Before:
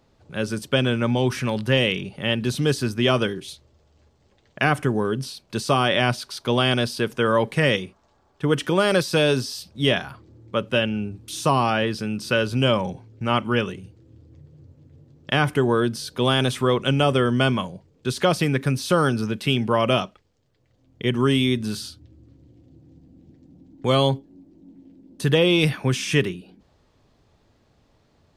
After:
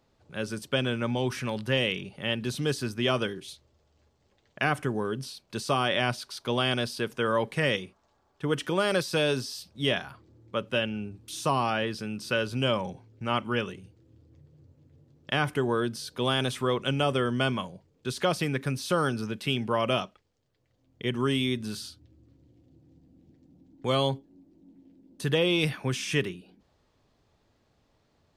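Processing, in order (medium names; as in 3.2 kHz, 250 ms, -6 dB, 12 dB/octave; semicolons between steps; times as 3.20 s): bass shelf 370 Hz -3 dB; trim -5.5 dB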